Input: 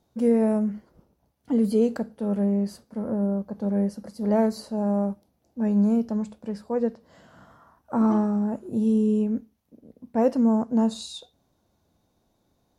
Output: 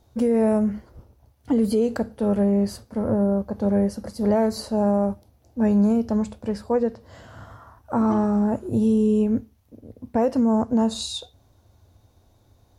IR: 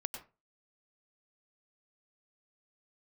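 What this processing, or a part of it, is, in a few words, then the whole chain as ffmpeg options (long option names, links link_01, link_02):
car stereo with a boomy subwoofer: -af "lowshelf=frequency=130:width_type=q:width=3:gain=6.5,alimiter=limit=-20.5dB:level=0:latency=1:release=164,volume=7.5dB"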